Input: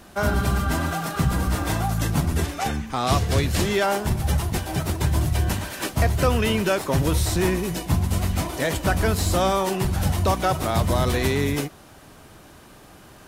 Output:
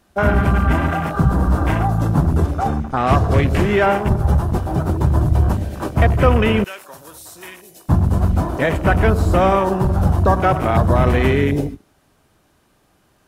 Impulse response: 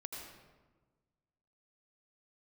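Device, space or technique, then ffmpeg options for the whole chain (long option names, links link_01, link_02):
keyed gated reverb: -filter_complex "[0:a]asplit=3[link_01][link_02][link_03];[1:a]atrim=start_sample=2205[link_04];[link_02][link_04]afir=irnorm=-1:irlink=0[link_05];[link_03]apad=whole_len=585417[link_06];[link_05][link_06]sidechaingate=range=-14dB:threshold=-36dB:ratio=16:detection=peak,volume=-4.5dB[link_07];[link_01][link_07]amix=inputs=2:normalize=0,afwtdn=0.0447,asettb=1/sr,asplit=3[link_08][link_09][link_10];[link_08]atrim=end=6.644[link_11];[link_09]atrim=start=6.64:end=7.89,asetpts=PTS-STARTPTS,afade=type=in:duration=0.004:curve=qsin,afade=type=out:start_time=1.246:duration=0.004:curve=qsin,aderivative[link_12];[link_10]atrim=start=7.886[link_13];[link_11][link_12]acrossfade=duration=0.004:curve1=hsin:curve2=qsin[link_14];[link_14][link_13]acrossfade=duration=0.004:curve1=qsin:curve2=hsin,volume=4dB"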